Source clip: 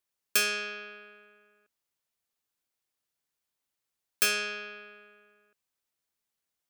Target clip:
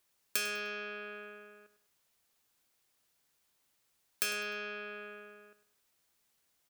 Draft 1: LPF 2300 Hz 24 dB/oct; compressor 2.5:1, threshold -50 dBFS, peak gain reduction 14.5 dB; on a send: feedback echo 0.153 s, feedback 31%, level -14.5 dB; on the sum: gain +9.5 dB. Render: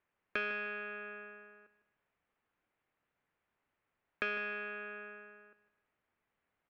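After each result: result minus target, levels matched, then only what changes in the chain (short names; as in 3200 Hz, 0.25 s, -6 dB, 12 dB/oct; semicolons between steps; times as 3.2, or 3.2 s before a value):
echo 52 ms late; 2000 Hz band +3.0 dB
change: feedback echo 0.101 s, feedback 31%, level -14.5 dB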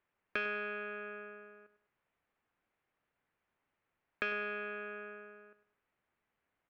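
2000 Hz band +3.0 dB
remove: LPF 2300 Hz 24 dB/oct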